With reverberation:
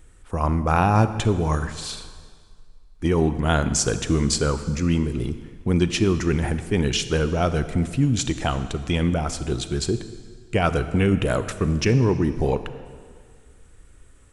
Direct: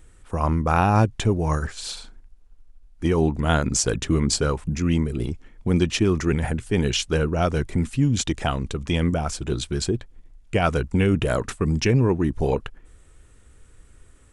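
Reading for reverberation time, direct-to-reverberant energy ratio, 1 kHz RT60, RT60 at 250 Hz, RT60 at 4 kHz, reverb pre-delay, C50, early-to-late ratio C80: 1.9 s, 11.0 dB, 1.9 s, 1.9 s, 1.7 s, 32 ms, 11.5 dB, 12.5 dB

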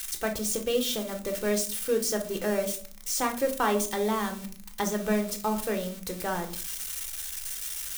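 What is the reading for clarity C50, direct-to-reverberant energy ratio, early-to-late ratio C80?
12.5 dB, 4.0 dB, 17.0 dB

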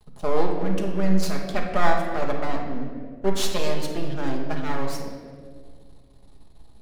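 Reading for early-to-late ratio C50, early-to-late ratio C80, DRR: 4.0 dB, 6.0 dB, 0.0 dB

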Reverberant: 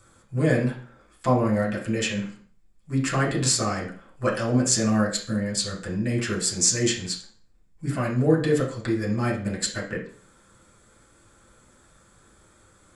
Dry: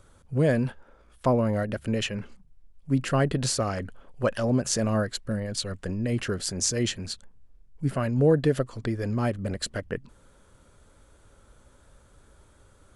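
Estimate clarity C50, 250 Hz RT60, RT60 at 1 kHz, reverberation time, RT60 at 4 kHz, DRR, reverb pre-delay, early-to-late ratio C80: 7.0 dB, 0.40 s, 0.45 s, 0.45 s, 0.40 s, -4.0 dB, 5 ms, 12.0 dB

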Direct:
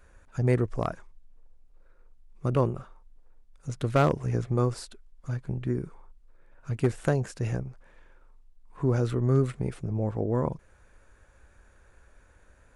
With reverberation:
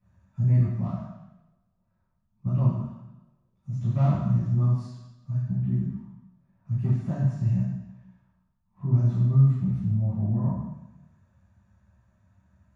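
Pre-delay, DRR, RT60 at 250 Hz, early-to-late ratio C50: 3 ms, -15.0 dB, 0.95 s, -1.0 dB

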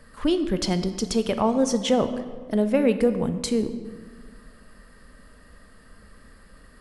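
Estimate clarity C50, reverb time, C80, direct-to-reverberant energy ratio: 11.0 dB, 1.6 s, 12.0 dB, 9.5 dB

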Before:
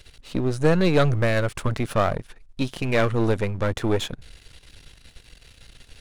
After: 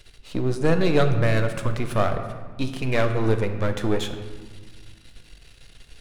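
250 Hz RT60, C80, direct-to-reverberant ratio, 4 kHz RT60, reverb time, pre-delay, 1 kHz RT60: 2.1 s, 10.0 dB, 6.0 dB, 0.95 s, 1.5 s, 3 ms, 1.4 s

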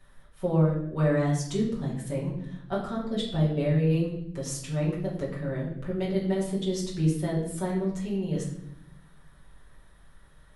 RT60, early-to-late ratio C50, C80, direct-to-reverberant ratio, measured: 0.75 s, 5.0 dB, 8.0 dB, -7.0 dB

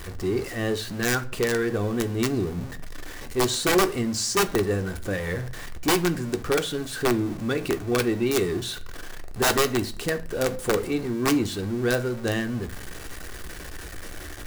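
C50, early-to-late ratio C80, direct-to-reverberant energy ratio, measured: 17.5 dB, 22.0 dB, 7.0 dB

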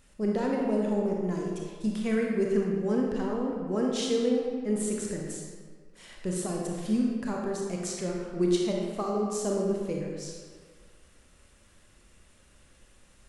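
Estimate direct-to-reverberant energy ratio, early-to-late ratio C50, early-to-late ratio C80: -1.0 dB, 0.5 dB, 2.0 dB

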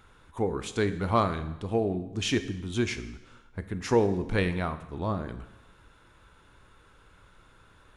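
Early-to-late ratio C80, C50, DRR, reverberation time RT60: 14.5 dB, 12.5 dB, 10.0 dB, 1.0 s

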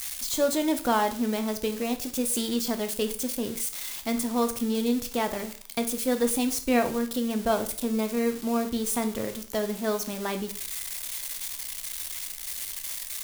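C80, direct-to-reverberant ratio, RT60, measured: 17.0 dB, 7.0 dB, 0.50 s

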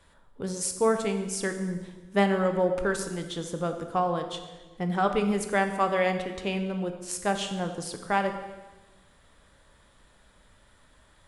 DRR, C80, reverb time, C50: 5.5 dB, 10.0 dB, 1.3 s, 8.5 dB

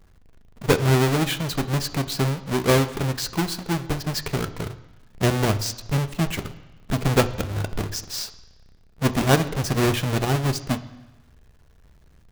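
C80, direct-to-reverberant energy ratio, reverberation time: 17.0 dB, 9.5 dB, 1.1 s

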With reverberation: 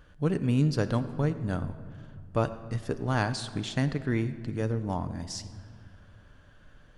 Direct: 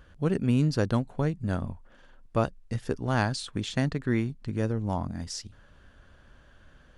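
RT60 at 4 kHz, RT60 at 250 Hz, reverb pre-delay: 1.3 s, 2.9 s, 7 ms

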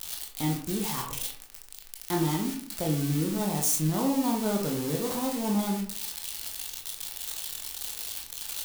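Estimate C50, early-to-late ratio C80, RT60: 6.5 dB, 11.0 dB, 0.50 s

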